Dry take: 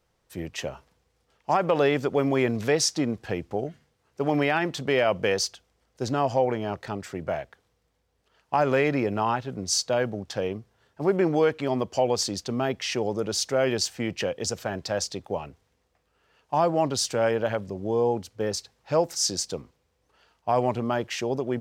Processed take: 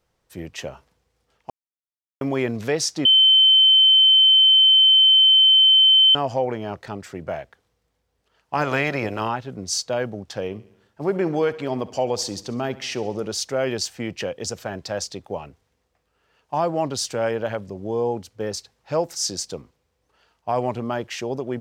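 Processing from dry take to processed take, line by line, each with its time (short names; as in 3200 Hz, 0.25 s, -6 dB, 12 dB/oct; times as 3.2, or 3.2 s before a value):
1.5–2.21 mute
3.05–6.15 bleep 3080 Hz -10.5 dBFS
8.55–9.27 spectral limiter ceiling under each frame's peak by 14 dB
10.46–13.34 feedback echo 68 ms, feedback 58%, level -18 dB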